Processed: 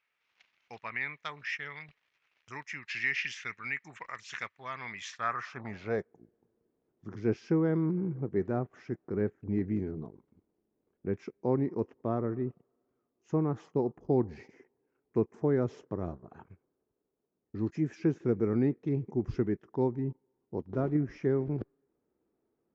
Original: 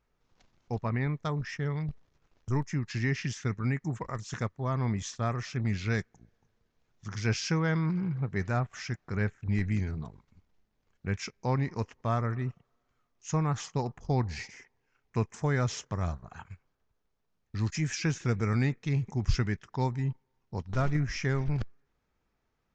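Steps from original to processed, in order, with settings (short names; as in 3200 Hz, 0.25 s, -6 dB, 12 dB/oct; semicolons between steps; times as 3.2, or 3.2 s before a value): band-pass sweep 2400 Hz -> 350 Hz, 5.01–6.25; gain +9 dB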